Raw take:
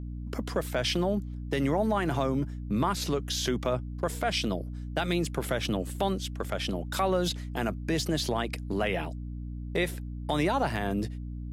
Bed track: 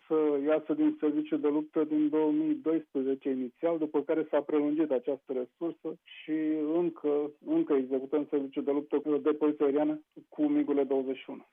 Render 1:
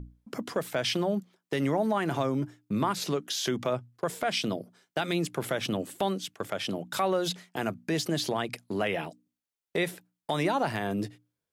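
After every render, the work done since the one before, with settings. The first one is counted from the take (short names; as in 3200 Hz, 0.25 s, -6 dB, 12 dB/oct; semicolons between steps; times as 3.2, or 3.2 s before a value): notches 60/120/180/240/300 Hz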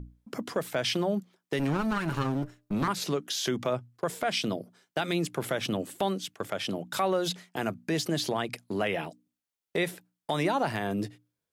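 1.59–2.88 minimum comb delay 0.72 ms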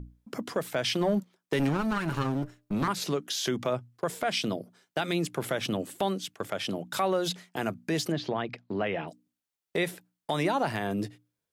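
1.01–1.69 sample leveller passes 1; 8.12–9.08 air absorption 230 m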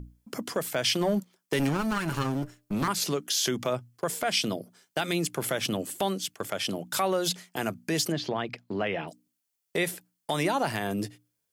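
high shelf 4200 Hz +9.5 dB; notch 3800 Hz, Q 18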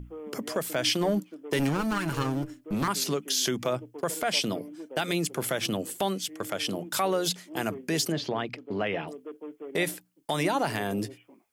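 add bed track -14 dB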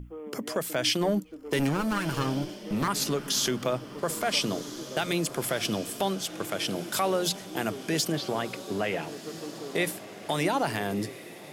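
diffused feedback echo 1.4 s, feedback 52%, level -13.5 dB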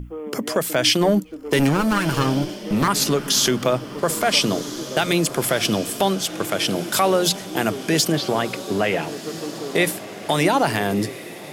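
gain +8.5 dB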